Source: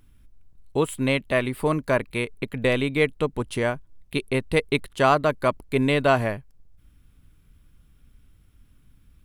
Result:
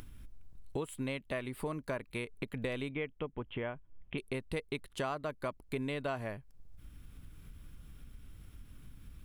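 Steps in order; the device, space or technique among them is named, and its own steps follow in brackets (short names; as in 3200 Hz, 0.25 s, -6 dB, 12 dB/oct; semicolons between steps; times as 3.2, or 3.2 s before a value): upward and downward compression (upward compressor, threshold -40 dBFS; compressor 4:1, threshold -35 dBFS, peak gain reduction 18 dB); 2.91–4.18 Chebyshev low-pass 3300 Hz, order 6; gain -1.5 dB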